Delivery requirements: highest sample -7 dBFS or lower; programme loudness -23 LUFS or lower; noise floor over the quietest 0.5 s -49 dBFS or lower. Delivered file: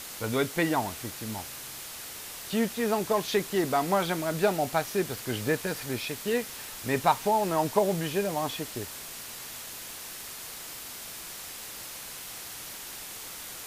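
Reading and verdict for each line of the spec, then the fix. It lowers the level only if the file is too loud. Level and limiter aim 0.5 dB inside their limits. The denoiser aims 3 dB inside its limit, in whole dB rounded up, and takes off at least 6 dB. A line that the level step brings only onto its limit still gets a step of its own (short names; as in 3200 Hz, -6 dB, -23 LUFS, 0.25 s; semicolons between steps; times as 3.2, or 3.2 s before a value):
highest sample -10.5 dBFS: OK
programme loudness -30.5 LUFS: OK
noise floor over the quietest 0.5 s -41 dBFS: fail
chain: denoiser 11 dB, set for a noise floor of -41 dBFS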